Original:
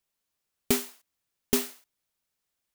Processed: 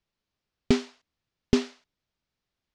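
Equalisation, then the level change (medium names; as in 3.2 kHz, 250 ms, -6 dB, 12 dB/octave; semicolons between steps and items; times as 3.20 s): low-pass 5.4 kHz 24 dB/octave; bass shelf 290 Hz +10.5 dB; 0.0 dB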